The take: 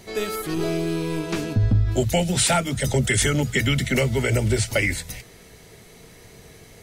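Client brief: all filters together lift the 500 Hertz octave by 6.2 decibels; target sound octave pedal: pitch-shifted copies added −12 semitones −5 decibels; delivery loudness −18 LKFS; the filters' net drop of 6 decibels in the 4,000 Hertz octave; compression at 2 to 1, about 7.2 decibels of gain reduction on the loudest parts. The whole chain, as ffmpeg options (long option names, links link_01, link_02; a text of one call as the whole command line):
ffmpeg -i in.wav -filter_complex "[0:a]equalizer=frequency=500:width_type=o:gain=8,equalizer=frequency=4000:width_type=o:gain=-8.5,acompressor=threshold=-26dB:ratio=2,asplit=2[link_01][link_02];[link_02]asetrate=22050,aresample=44100,atempo=2,volume=-5dB[link_03];[link_01][link_03]amix=inputs=2:normalize=0,volume=7.5dB" out.wav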